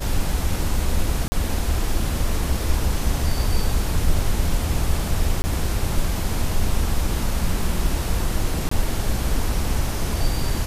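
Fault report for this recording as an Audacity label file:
1.280000	1.320000	dropout 40 ms
5.420000	5.440000	dropout 20 ms
8.690000	8.710000	dropout 24 ms

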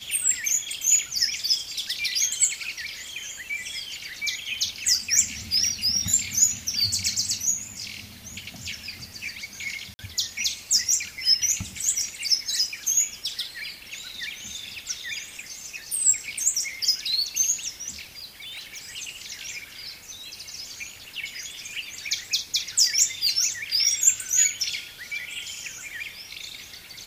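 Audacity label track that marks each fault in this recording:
9.940000	9.990000	dropout 50 ms
18.160000	18.910000	clipped -34 dBFS

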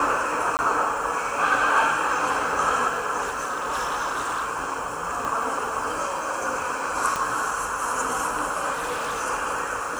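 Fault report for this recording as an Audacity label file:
0.570000	0.590000	dropout 19 ms
3.210000	4.490000	clipped -22.5 dBFS
5.250000	5.250000	pop
7.160000	7.160000	pop -11 dBFS
8.730000	9.210000	clipped -24.5 dBFS

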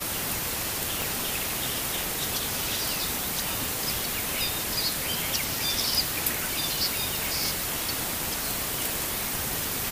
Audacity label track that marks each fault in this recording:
1.020000	1.020000	pop

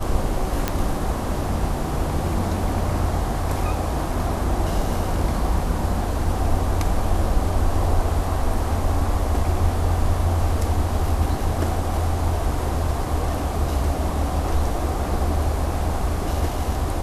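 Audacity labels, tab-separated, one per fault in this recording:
0.680000	0.680000	pop -6 dBFS

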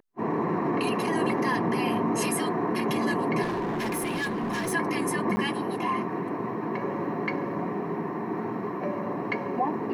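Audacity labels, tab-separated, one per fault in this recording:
3.420000	4.730000	clipped -26 dBFS
5.360000	5.370000	dropout 10 ms

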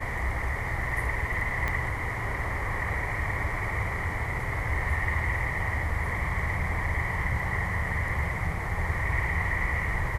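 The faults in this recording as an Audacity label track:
1.680000	1.680000	pop -16 dBFS

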